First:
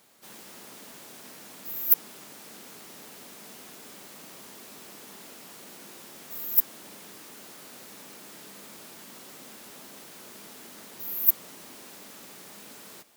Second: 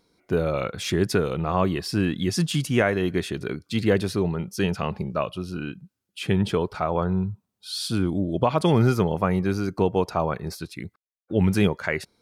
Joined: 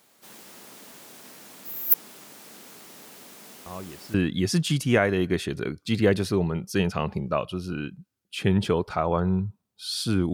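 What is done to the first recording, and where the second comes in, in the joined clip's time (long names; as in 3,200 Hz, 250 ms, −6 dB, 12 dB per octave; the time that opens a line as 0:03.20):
first
0:03.66: mix in second from 0:01.50 0.48 s −16 dB
0:04.14: continue with second from 0:01.98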